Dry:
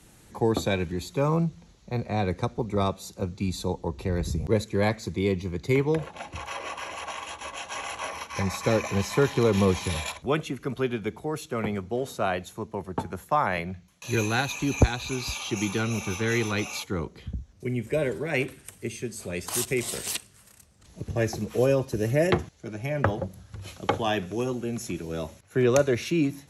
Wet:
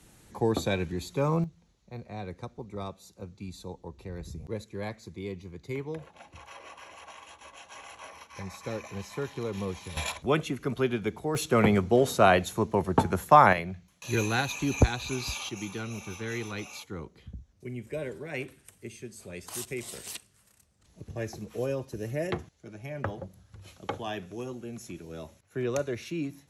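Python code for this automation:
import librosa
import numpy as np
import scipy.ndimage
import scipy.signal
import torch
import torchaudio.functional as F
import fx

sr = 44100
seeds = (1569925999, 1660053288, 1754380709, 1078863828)

y = fx.gain(x, sr, db=fx.steps((0.0, -2.5), (1.44, -12.0), (9.97, 0.0), (11.35, 7.0), (13.53, -2.0), (15.49, -9.0)))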